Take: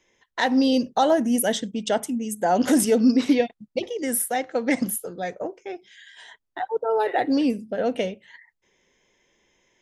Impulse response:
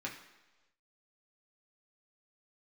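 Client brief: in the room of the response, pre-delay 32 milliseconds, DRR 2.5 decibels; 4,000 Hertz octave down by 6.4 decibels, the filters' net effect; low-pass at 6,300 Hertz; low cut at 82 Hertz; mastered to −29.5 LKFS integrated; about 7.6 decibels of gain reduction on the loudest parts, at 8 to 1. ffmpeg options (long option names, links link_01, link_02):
-filter_complex "[0:a]highpass=82,lowpass=6300,equalizer=frequency=4000:width_type=o:gain=-8,acompressor=threshold=-22dB:ratio=8,asplit=2[link_01][link_02];[1:a]atrim=start_sample=2205,adelay=32[link_03];[link_02][link_03]afir=irnorm=-1:irlink=0,volume=-4dB[link_04];[link_01][link_04]amix=inputs=2:normalize=0,volume=-3dB"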